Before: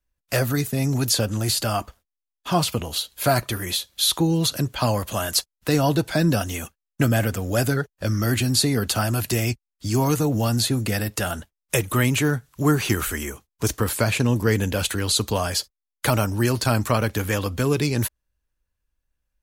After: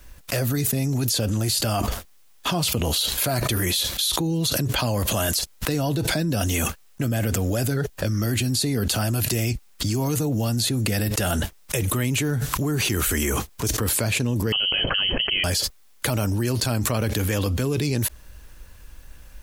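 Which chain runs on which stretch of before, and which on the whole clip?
14.52–15.44 bell 780 Hz -4 dB 2.4 oct + inverted band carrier 3100 Hz
whole clip: dynamic EQ 1200 Hz, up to -6 dB, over -37 dBFS, Q 0.86; fast leveller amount 100%; gain -7 dB

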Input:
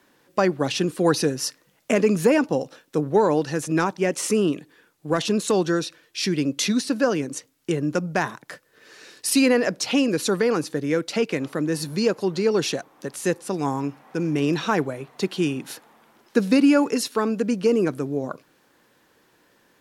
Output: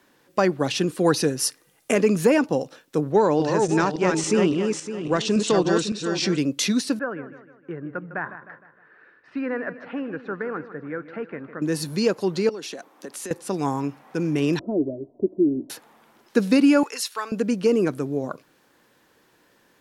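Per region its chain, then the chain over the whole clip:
1.39–1.96 bell 10000 Hz +8.5 dB 0.53 oct + comb 2.5 ms, depth 32%
3.12–6.39 regenerating reverse delay 0.28 s, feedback 43%, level -4 dB + steep low-pass 8300 Hz
6.99–11.62 ladder low-pass 1800 Hz, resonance 55% + feedback echo 0.154 s, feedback 48%, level -13 dB
12.49–13.31 HPF 200 Hz 24 dB/oct + compressor 16:1, threshold -30 dBFS
14.59–15.7 steep low-pass 580 Hz + comb 3.1 ms, depth 73%
16.83–17.32 HPF 1000 Hz + expander -44 dBFS
whole clip: dry

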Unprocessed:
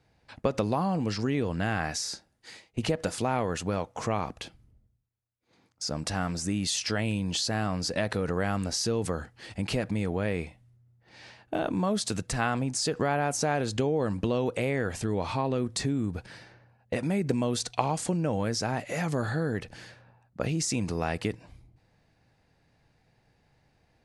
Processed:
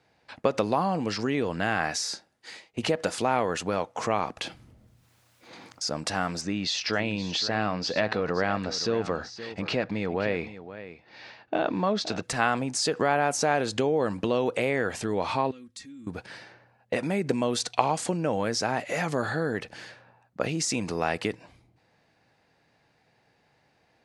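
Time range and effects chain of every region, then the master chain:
4.37–5.85 notch 420 Hz, Q 8.3 + fast leveller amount 50%
6.41–12.23 LPF 5400 Hz 24 dB/oct + notch 3100 Hz, Q 20 + echo 0.521 s -13.5 dB
15.51–16.07 passive tone stack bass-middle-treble 6-0-2 + comb 3.7 ms, depth 77%
whole clip: HPF 360 Hz 6 dB/oct; high shelf 8500 Hz -9 dB; gain +5 dB

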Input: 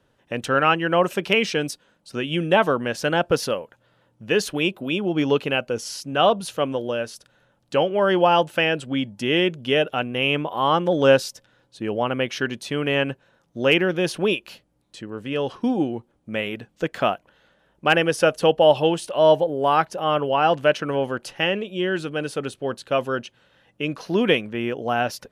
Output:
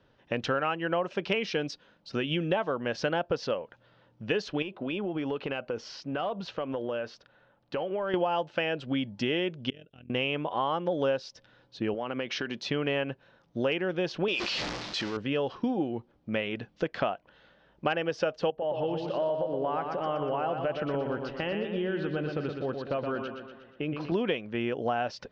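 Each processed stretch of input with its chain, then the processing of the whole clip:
4.62–8.14 overdrive pedal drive 7 dB, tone 1200 Hz, clips at -6 dBFS + compressor 5:1, threshold -28 dBFS
9.7–10.1 passive tone stack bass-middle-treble 10-0-1 + compressor 1.5:1, threshold -46 dBFS + AM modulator 42 Hz, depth 70%
11.94–12.64 HPF 160 Hz + compressor 4:1, threshold -28 dBFS
14.28–15.17 zero-crossing step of -34 dBFS + tilt +2.5 dB/oct + sustainer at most 33 dB/s
18.5–24.12 compressor 2.5:1, threshold -26 dBFS + tape spacing loss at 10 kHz 25 dB + feedback echo 0.12 s, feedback 53%, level -6 dB
whole clip: steep low-pass 5500 Hz 36 dB/oct; dynamic EQ 670 Hz, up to +4 dB, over -27 dBFS, Q 0.94; compressor 6:1, threshold -26 dBFS

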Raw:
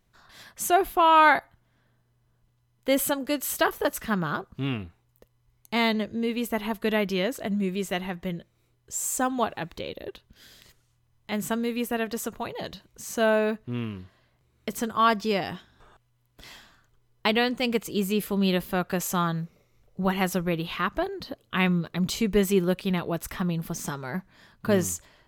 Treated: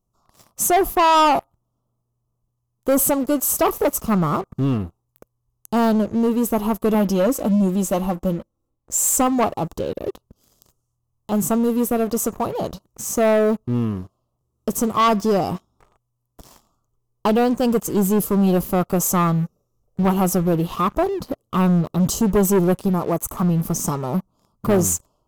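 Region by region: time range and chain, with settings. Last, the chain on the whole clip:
6.94–9.22 comb 3.7 ms, depth 63% + mismatched tape noise reduction decoder only
22.88–23.43 brick-wall FIR band-stop 2500–5900 Hz + low shelf 230 Hz -6.5 dB
whole clip: elliptic band-stop 1300–2700 Hz; band shelf 2700 Hz -14 dB; sample leveller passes 3

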